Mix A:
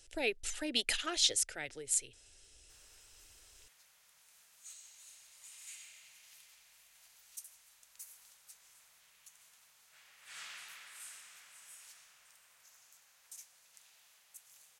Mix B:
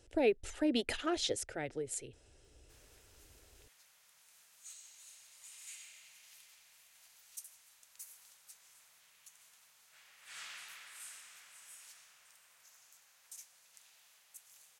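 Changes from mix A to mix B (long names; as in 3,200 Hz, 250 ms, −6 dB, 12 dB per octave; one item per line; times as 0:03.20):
speech: add tilt shelving filter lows +10 dB, about 1,400 Hz
master: add high-pass filter 73 Hz 6 dB per octave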